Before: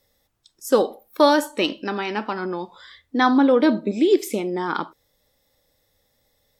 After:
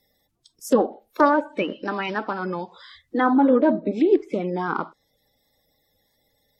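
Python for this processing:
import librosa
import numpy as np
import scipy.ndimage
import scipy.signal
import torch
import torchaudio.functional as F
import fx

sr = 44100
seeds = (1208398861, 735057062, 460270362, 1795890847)

y = fx.spec_quant(x, sr, step_db=30)
y = fx.env_lowpass_down(y, sr, base_hz=1300.0, full_db=-17.0)
y = fx.doppler_dist(y, sr, depth_ms=0.13, at=(0.79, 1.34))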